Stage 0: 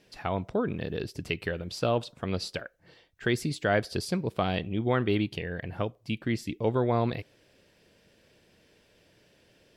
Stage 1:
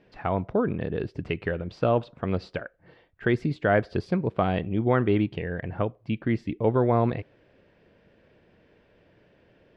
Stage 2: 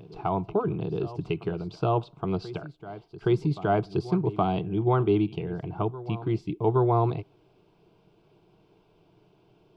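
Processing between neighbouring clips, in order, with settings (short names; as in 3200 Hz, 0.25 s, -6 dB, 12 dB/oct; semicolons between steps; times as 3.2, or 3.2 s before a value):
LPF 1900 Hz 12 dB/oct; gain +4 dB
fixed phaser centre 360 Hz, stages 8; reverse echo 0.819 s -16.5 dB; gain +2.5 dB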